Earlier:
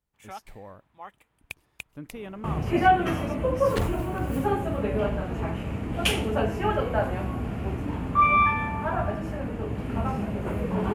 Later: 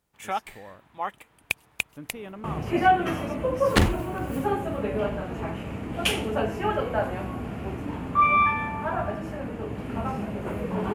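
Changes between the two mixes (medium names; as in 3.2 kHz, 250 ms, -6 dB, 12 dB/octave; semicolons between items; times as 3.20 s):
first sound +12.0 dB; master: add bass shelf 100 Hz -9 dB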